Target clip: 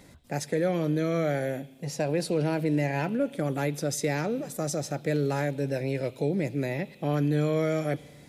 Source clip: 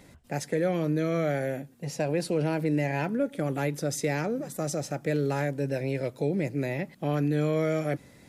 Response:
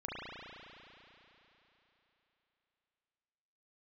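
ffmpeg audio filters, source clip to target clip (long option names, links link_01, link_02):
-filter_complex "[0:a]asplit=2[link_01][link_02];[link_02]highshelf=frequency=2400:width_type=q:width=3:gain=12[link_03];[1:a]atrim=start_sample=2205,afade=type=out:start_time=0.39:duration=0.01,atrim=end_sample=17640[link_04];[link_03][link_04]afir=irnorm=-1:irlink=0,volume=-22.5dB[link_05];[link_01][link_05]amix=inputs=2:normalize=0"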